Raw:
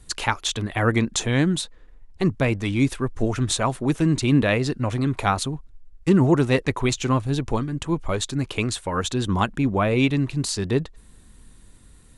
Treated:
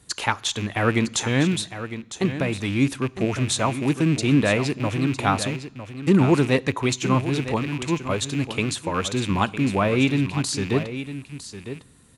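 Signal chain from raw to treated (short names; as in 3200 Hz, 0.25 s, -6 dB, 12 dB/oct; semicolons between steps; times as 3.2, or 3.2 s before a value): rattling part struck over -30 dBFS, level -24 dBFS; on a send at -20.5 dB: reverb RT60 0.95 s, pre-delay 3 ms; 2.25–2.68 on the sum: compressor, threshold -20 dBFS, peak gain reduction 5 dB; HPF 97 Hz; echo 0.956 s -11.5 dB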